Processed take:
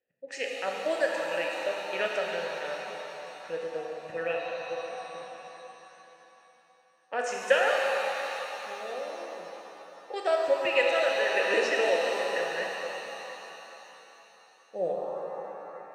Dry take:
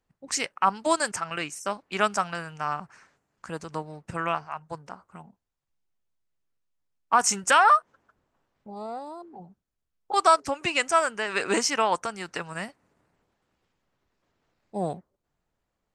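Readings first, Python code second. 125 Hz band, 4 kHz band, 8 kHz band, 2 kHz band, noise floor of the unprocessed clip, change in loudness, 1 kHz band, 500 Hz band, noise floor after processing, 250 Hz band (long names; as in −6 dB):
below −10 dB, −2.5 dB, −14.0 dB, −0.5 dB, −82 dBFS, −4.5 dB, −9.0 dB, +3.5 dB, −61 dBFS, −8.0 dB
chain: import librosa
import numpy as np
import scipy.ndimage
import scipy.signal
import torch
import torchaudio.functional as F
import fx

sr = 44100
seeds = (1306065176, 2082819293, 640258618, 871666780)

y = fx.vowel_filter(x, sr, vowel='e')
y = fx.rev_shimmer(y, sr, seeds[0], rt60_s=3.6, semitones=7, shimmer_db=-8, drr_db=-1.0)
y = y * 10.0 ** (7.5 / 20.0)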